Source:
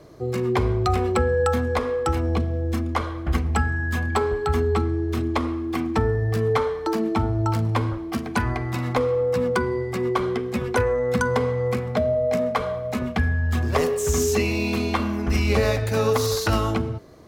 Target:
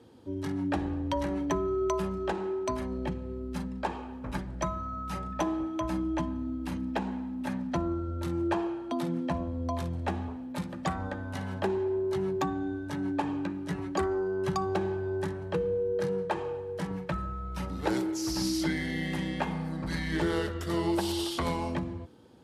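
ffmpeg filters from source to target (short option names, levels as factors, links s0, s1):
-af "asetrate=33957,aresample=44100,highpass=98,volume=0.422"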